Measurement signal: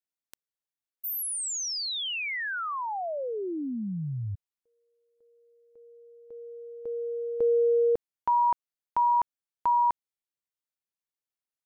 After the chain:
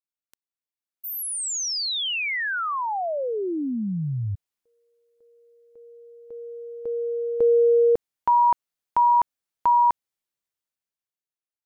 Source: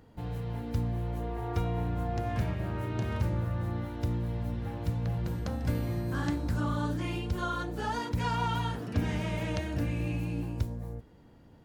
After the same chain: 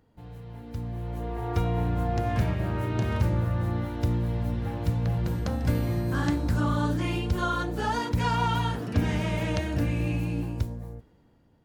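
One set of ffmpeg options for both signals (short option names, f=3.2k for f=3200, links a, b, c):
-af "dynaudnorm=f=260:g=9:m=13dB,volume=-7.5dB"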